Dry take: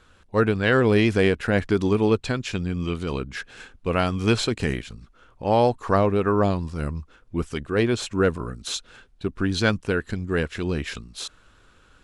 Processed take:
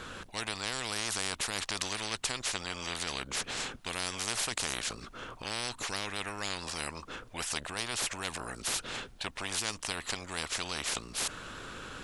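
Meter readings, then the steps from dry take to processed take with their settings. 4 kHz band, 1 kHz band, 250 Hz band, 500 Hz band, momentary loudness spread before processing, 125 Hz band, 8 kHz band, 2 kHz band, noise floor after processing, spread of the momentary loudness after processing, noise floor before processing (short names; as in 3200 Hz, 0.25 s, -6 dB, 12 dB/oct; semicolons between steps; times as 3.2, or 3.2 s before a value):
-0.5 dB, -11.0 dB, -21.0 dB, -20.5 dB, 13 LU, -21.0 dB, +5.5 dB, -7.5 dB, -52 dBFS, 7 LU, -57 dBFS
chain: spectral compressor 10:1; gain -5 dB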